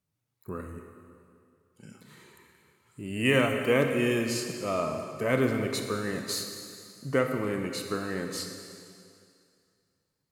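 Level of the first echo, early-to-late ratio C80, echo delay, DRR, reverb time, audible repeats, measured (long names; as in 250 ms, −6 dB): no echo audible, 6.0 dB, no echo audible, 4.0 dB, 2.4 s, no echo audible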